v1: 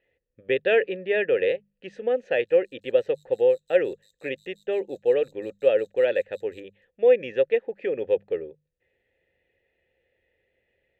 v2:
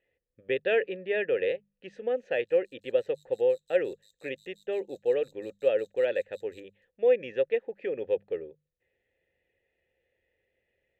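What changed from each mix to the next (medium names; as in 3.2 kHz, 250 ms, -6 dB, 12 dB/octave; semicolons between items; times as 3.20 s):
speech -5.0 dB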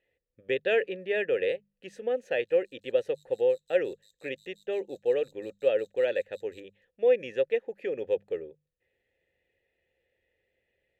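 speech: remove low-pass 3.6 kHz 12 dB/octave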